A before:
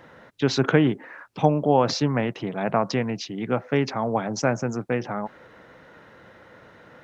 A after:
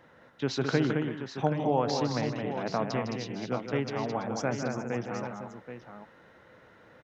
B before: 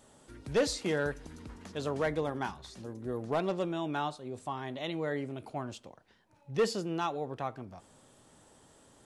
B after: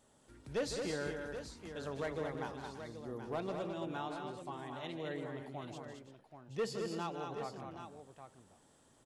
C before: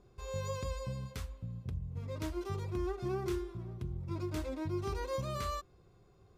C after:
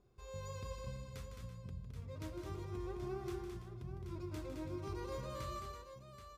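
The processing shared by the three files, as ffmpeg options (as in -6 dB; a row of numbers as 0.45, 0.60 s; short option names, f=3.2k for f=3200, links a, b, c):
-af "aecho=1:1:156|215|333|779:0.335|0.531|0.211|0.335,volume=-8.5dB"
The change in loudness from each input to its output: -7.0, -7.0, -7.0 LU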